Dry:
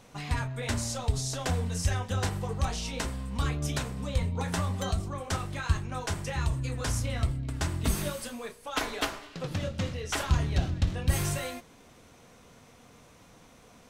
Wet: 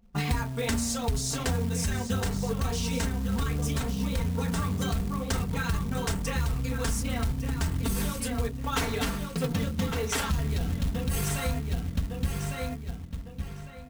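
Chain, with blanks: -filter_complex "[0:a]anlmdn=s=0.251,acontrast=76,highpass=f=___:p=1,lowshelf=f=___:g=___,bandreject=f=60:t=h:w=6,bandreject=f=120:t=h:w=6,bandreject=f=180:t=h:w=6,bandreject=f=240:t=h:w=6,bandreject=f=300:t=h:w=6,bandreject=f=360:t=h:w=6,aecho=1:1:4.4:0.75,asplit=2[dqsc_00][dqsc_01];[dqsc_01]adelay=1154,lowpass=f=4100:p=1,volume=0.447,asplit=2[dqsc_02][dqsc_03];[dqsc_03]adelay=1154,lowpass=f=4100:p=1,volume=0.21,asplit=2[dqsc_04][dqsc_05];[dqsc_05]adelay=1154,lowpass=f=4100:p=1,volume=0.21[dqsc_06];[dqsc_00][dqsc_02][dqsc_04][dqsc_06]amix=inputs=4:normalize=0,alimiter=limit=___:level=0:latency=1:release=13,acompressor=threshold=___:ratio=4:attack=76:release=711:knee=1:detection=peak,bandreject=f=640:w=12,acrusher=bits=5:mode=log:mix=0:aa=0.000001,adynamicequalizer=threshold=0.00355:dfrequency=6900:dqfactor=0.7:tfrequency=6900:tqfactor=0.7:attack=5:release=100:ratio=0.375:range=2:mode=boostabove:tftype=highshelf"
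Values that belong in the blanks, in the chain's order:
64, 220, 10, 0.251, 0.0398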